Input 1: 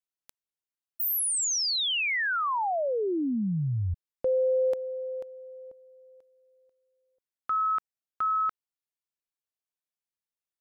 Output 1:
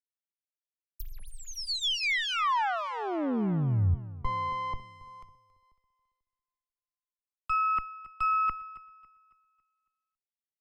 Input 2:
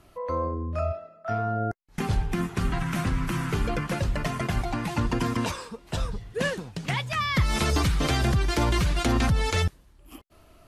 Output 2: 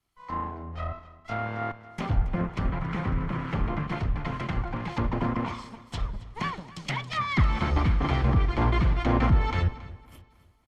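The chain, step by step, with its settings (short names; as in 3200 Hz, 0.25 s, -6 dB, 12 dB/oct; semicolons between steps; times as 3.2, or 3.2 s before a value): minimum comb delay 0.93 ms; treble ducked by the level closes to 2000 Hz, closed at -24 dBFS; on a send: feedback echo 0.276 s, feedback 57%, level -13 dB; on the sum: three-band expander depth 70%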